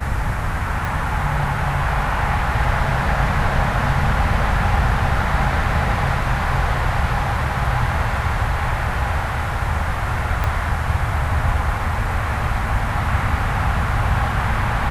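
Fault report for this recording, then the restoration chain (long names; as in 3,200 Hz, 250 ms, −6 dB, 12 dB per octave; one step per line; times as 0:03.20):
0:00.85: click
0:10.44: click −9 dBFS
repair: click removal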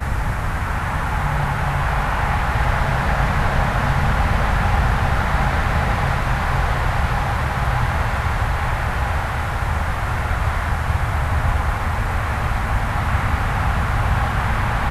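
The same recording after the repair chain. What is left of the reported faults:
0:00.85: click
0:10.44: click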